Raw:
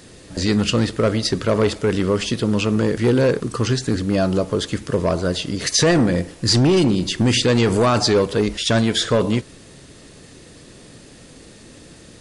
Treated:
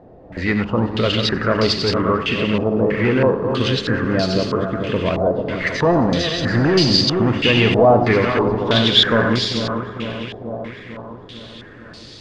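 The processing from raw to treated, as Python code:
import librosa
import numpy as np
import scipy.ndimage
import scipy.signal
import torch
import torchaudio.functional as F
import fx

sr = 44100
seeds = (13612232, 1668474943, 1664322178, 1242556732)

y = fx.reverse_delay_fb(x, sr, ms=225, feedback_pct=79, wet_db=-7.5)
y = fx.echo_thinned(y, sr, ms=92, feedback_pct=68, hz=1100.0, wet_db=-8.0)
y = fx.filter_held_lowpass(y, sr, hz=3.1, low_hz=730.0, high_hz=4600.0)
y = F.gain(torch.from_numpy(y), -2.0).numpy()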